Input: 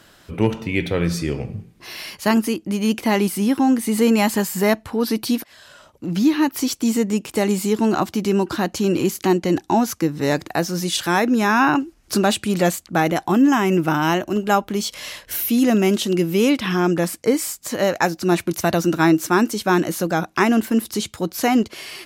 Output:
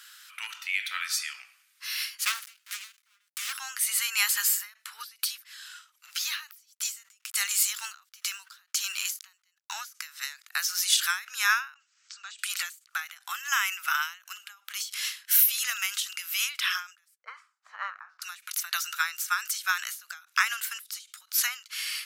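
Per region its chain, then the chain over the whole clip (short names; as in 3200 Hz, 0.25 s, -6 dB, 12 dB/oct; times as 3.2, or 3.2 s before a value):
2.25–3.53 switching dead time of 0.15 ms + Doppler distortion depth 0.63 ms
6.08–9.74 tone controls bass -4 dB, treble +3 dB + backlash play -45.5 dBFS
11.74–12.39 bell 330 Hz +8.5 dB 0.4 oct + compressor 2:1, threshold -42 dBFS + brick-wall FIR low-pass 8200 Hz
17.18–18.22 doubler 31 ms -12 dB + envelope low-pass 490–1100 Hz up, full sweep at -18.5 dBFS
whole clip: elliptic high-pass 1300 Hz, stop band 80 dB; high shelf 5400 Hz +7.5 dB; ending taper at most 160 dB/s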